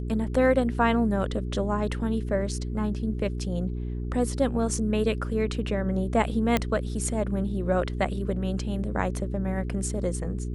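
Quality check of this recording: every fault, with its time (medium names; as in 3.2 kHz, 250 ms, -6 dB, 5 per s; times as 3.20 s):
hum 60 Hz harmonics 7 -31 dBFS
6.57 s: pop -9 dBFS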